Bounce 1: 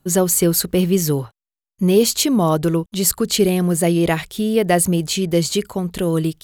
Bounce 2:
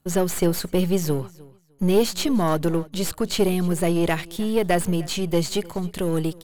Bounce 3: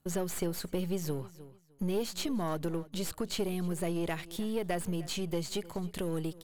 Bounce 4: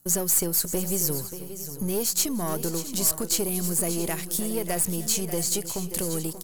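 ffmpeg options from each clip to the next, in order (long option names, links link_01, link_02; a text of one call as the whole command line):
ffmpeg -i in.wav -filter_complex "[0:a]aeval=exprs='if(lt(val(0),0),0.447*val(0),val(0))':channel_layout=same,acrossover=split=4200[link_01][link_02];[link_02]acompressor=threshold=-27dB:ratio=4:attack=1:release=60[link_03];[link_01][link_03]amix=inputs=2:normalize=0,aecho=1:1:304|608:0.0794|0.0143,volume=-1.5dB" out.wav
ffmpeg -i in.wav -af "acompressor=threshold=-30dB:ratio=2,volume=-5dB" out.wav
ffmpeg -i in.wav -filter_complex "[0:a]aexciter=amount=7.3:drive=1.5:freq=5000,asplit=2[link_01][link_02];[link_02]aecho=0:1:579|587|675:0.1|0.266|0.168[link_03];[link_01][link_03]amix=inputs=2:normalize=0,volume=3.5dB" out.wav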